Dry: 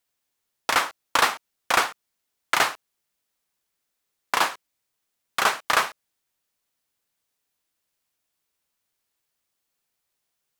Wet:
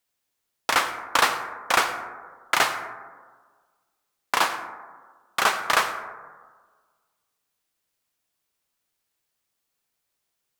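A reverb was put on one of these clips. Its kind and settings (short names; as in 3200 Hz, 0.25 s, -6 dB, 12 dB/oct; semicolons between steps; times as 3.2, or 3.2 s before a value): plate-style reverb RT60 1.5 s, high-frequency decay 0.25×, pre-delay 75 ms, DRR 10 dB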